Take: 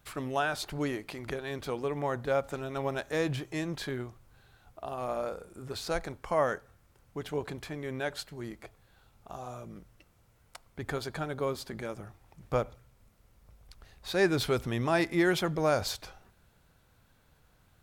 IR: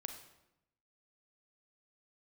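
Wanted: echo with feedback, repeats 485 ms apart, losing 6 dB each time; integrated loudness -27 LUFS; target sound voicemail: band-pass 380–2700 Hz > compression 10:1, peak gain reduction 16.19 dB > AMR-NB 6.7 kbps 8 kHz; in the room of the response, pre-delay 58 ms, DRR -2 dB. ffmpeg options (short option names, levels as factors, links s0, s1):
-filter_complex "[0:a]aecho=1:1:485|970|1455|1940|2425|2910:0.501|0.251|0.125|0.0626|0.0313|0.0157,asplit=2[s0][s1];[1:a]atrim=start_sample=2205,adelay=58[s2];[s1][s2]afir=irnorm=-1:irlink=0,volume=1.68[s3];[s0][s3]amix=inputs=2:normalize=0,highpass=380,lowpass=2700,acompressor=threshold=0.02:ratio=10,volume=5.01" -ar 8000 -c:a libopencore_amrnb -b:a 6700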